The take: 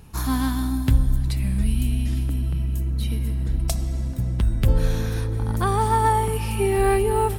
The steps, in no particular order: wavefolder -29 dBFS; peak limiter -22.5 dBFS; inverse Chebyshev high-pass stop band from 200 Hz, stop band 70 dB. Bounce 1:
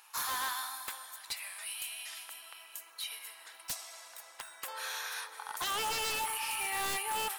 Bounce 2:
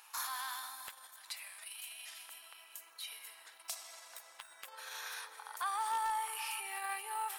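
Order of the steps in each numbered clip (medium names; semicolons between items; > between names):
inverse Chebyshev high-pass > wavefolder > peak limiter; peak limiter > inverse Chebyshev high-pass > wavefolder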